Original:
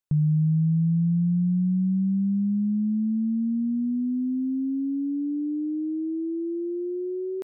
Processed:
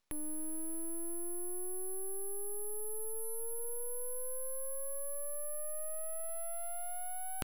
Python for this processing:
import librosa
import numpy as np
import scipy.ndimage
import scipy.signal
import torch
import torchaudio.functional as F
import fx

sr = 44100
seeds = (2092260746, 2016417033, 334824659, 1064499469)

y = np.repeat(scipy.signal.resample_poly(x, 1, 4), 4)[:len(x)]
y = scipy.signal.sosfilt(scipy.signal.cheby2(4, 40, 410.0, 'highpass', fs=sr, output='sos'), y)
y = np.abs(y)
y = y * 10.0 ** (16.0 / 20.0)